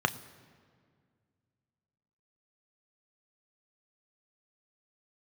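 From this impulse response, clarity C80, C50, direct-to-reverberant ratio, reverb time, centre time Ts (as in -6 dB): 17.5 dB, 17.0 dB, 9.5 dB, 2.0 s, 7 ms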